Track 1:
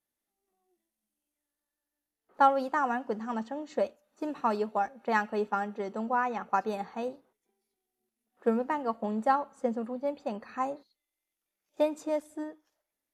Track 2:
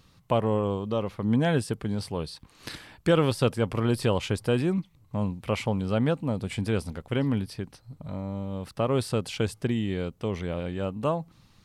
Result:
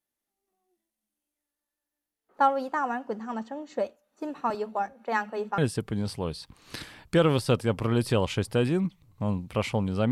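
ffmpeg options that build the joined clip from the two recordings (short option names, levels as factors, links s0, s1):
-filter_complex "[0:a]asettb=1/sr,asplit=3[s0][s1][s2];[s0]atrim=end=4.504[s3];[s1]atrim=start=4.5:end=5.58,asetpts=PTS-STARTPTS,afade=t=in:d=0.004:c=qsin,afade=t=out:st=1.076:d=0.004:c=qsin,acrossover=split=240[s4][s5];[s4]adelay=40[s6];[s6][s5]amix=inputs=2:normalize=0,atrim=end_sample=47628[s7];[s2]atrim=start=5.576[s8];[s3][s7]acrossfade=d=0.004:c1=hsin:c2=qsin[s9];[s9][s8]acrossfade=d=0.004:c1=qsin:c2=hsin,apad=whole_dur=10.11,atrim=end=10.11,atrim=end=5.582[s10];[1:a]atrim=start=1.508:end=6.04[s11];[s10][s11]acrossfade=d=0.004:c1=hsin:c2=hsin"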